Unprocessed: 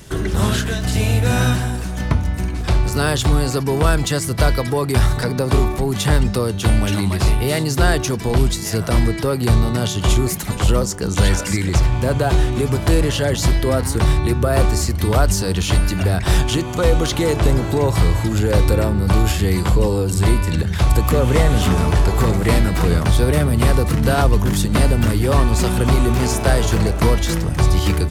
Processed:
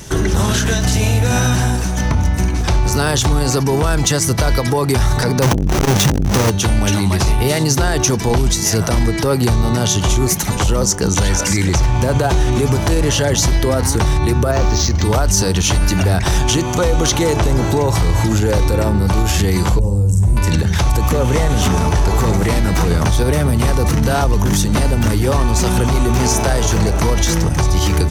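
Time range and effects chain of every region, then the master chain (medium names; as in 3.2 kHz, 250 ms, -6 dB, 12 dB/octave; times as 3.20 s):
5.42–6.50 s: square wave that keeps the level + transformer saturation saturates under 240 Hz
14.51–15.04 s: resonant high shelf 7.8 kHz -9 dB, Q 3 + decimation joined by straight lines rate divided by 4×
19.79–20.37 s: FFT filter 130 Hz 0 dB, 380 Hz -17 dB, 570 Hz -11 dB, 1.4 kHz -23 dB, 4.5 kHz -26 dB, 7.8 kHz -7 dB, 12 kHz -11 dB + flutter echo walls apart 8.5 m, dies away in 0.34 s + loudspeaker Doppler distortion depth 0.11 ms
whole clip: peaking EQ 860 Hz +5 dB 0.21 oct; peak limiter -12.5 dBFS; peaking EQ 6 kHz +10 dB 0.24 oct; trim +6 dB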